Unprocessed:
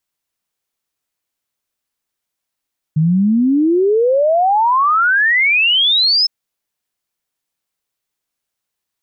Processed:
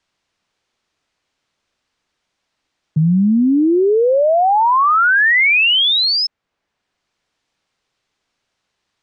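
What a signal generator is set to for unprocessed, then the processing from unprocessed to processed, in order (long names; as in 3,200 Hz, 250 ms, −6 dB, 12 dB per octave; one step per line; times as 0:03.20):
exponential sine sweep 150 Hz → 5,300 Hz 3.31 s −10 dBFS
Bessel low-pass filter 4,600 Hz, order 4
multiband upward and downward compressor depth 40%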